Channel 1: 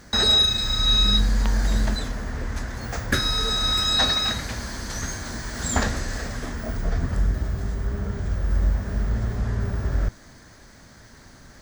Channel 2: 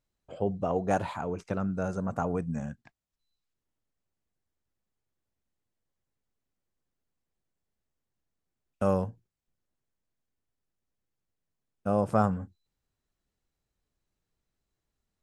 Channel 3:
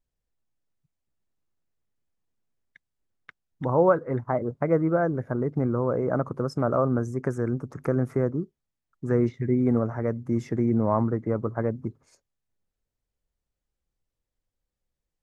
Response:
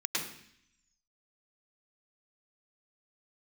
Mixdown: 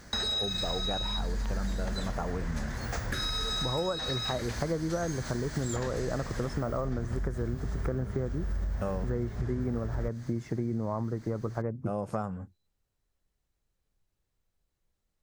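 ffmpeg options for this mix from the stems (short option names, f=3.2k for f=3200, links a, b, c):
-filter_complex "[0:a]alimiter=limit=-16dB:level=0:latency=1:release=116,volume=-3dB[a];[1:a]volume=-1dB[b];[2:a]lowshelf=f=170:g=5,volume=-1dB[c];[a][b][c]amix=inputs=3:normalize=0,equalizer=f=260:w=3.6:g=-2.5,acompressor=threshold=-28dB:ratio=6"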